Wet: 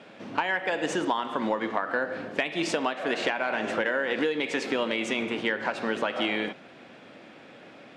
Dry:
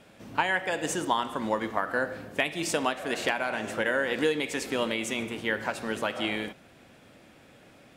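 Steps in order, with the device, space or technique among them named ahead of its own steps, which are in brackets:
AM radio (band-pass filter 200–4,100 Hz; downward compressor 5 to 1, threshold −30 dBFS, peak gain reduction 9.5 dB; soft clipping −17.5 dBFS, distortion −27 dB)
level +7 dB

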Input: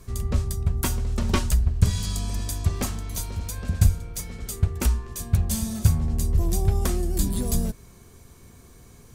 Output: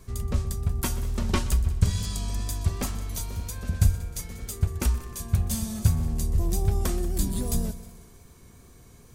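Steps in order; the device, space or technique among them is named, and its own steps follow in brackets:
multi-head tape echo (echo machine with several playback heads 62 ms, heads second and third, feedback 51%, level −18 dB; tape wow and flutter 24 cents)
level −2.5 dB

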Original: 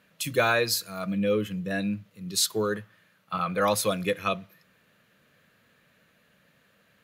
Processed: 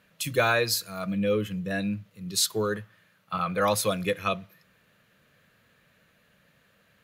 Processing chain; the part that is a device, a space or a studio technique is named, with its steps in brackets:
low shelf boost with a cut just above (low-shelf EQ 90 Hz +7 dB; parametric band 260 Hz −2.5 dB 1 octave)

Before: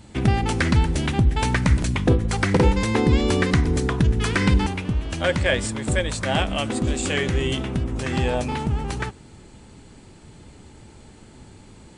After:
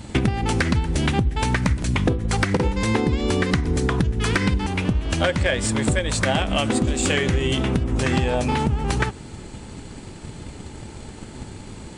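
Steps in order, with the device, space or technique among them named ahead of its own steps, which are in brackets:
drum-bus smash (transient designer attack +6 dB, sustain 0 dB; downward compressor 10 to 1, threshold −24 dBFS, peak gain reduction 16 dB; soft clipping −15.5 dBFS, distortion −22 dB)
level +8 dB

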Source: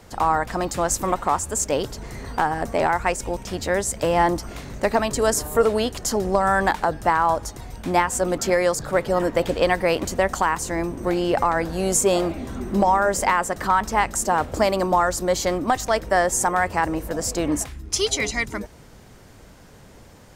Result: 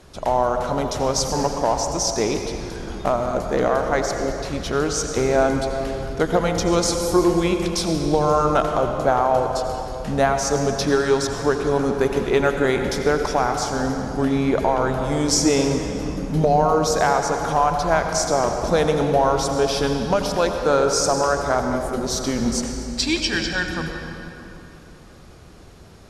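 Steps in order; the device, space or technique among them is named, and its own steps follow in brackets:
slowed and reverbed (speed change −22%; convolution reverb RT60 3.3 s, pre-delay 75 ms, DRR 4 dB)

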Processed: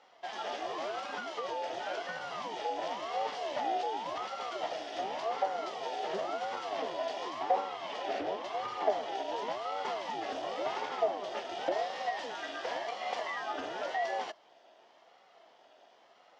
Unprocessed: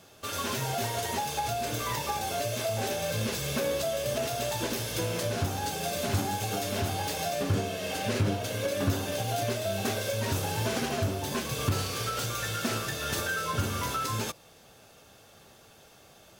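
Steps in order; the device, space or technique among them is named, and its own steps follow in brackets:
voice changer toy (ring modulator whose carrier an LFO sweeps 420 Hz, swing 60%, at 0.92 Hz; loudspeaker in its box 520–4,300 Hz, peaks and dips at 680 Hz +9 dB, 1,100 Hz −5 dB, 1,500 Hz −4 dB, 2,400 Hz −6 dB, 4,000 Hz −8 dB)

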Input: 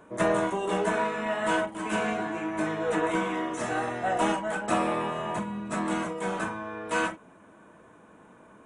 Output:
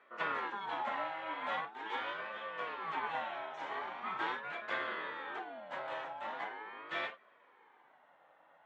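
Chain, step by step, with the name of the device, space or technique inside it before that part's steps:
voice changer toy (ring modulator whose carrier an LFO sweeps 590 Hz, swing 45%, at 0.42 Hz; loudspeaker in its box 450–4,300 Hz, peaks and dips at 840 Hz +6 dB, 1,800 Hz +3 dB, 3,400 Hz +5 dB)
level −8.5 dB

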